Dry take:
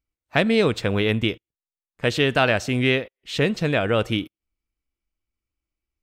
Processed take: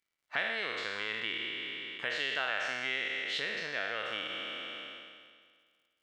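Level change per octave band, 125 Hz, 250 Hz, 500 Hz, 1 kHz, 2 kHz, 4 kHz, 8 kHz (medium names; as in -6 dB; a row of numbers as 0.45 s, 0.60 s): -32.5 dB, -26.0 dB, -19.5 dB, -12.0 dB, -6.5 dB, -6.5 dB, -12.5 dB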